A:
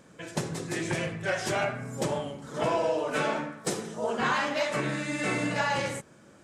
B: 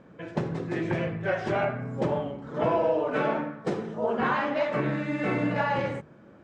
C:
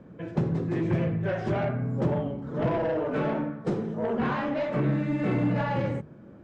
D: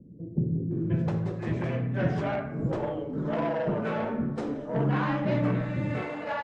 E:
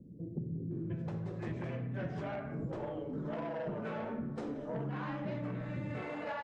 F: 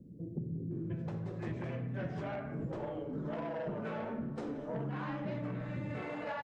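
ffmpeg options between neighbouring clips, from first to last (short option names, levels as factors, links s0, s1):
-af "lowpass=2900,tiltshelf=f=1400:g=4,bandreject=f=50:t=h:w=6,bandreject=f=100:t=h:w=6,bandreject=f=150:t=h:w=6"
-filter_complex "[0:a]lowshelf=f=490:g=11.5,acrossover=split=180|3200[s0][s1][s2];[s1]asoftclip=type=tanh:threshold=0.119[s3];[s0][s3][s2]amix=inputs=3:normalize=0,volume=0.596"
-filter_complex "[0:a]acrossover=split=390[s0][s1];[s1]adelay=710[s2];[s0][s2]amix=inputs=2:normalize=0"
-af "acompressor=threshold=0.0224:ratio=5,volume=0.708"
-af "aecho=1:1:617:0.1"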